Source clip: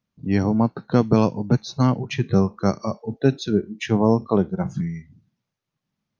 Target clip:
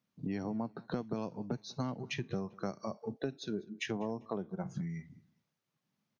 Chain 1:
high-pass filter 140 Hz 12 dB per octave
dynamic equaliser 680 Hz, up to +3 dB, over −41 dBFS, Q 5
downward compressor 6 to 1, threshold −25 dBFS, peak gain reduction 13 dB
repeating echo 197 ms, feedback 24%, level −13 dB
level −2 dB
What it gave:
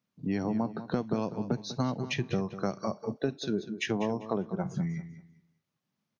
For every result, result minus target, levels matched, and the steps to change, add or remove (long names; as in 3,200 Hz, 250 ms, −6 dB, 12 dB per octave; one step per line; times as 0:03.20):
echo-to-direct +12 dB; downward compressor: peak gain reduction −6.5 dB
change: repeating echo 197 ms, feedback 24%, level −25 dB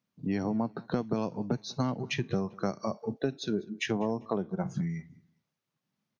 downward compressor: peak gain reduction −6.5 dB
change: downward compressor 6 to 1, threshold −33 dBFS, peak gain reduction 19.5 dB